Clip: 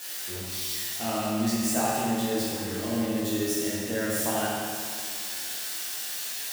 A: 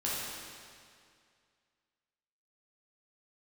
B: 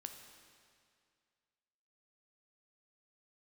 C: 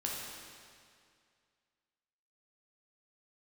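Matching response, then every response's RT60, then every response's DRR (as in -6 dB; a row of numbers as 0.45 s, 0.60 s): A; 2.2 s, 2.2 s, 2.2 s; -8.0 dB, 5.0 dB, -3.5 dB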